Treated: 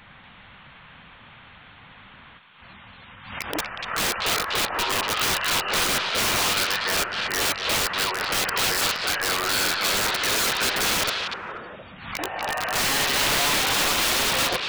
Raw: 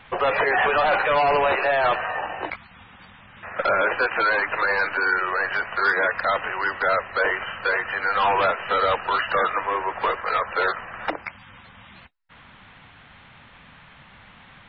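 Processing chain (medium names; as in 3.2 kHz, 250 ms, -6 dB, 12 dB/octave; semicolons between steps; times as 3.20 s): reverse the whole clip; integer overflow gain 19 dB; repeats whose band climbs or falls 240 ms, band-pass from 3.2 kHz, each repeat -1.4 oct, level -1 dB; swell ahead of each attack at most 80 dB/s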